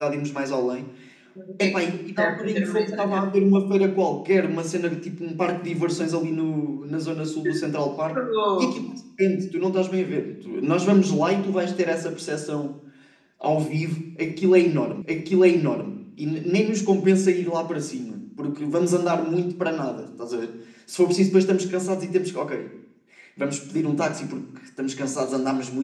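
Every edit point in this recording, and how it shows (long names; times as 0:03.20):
0:15.02: the same again, the last 0.89 s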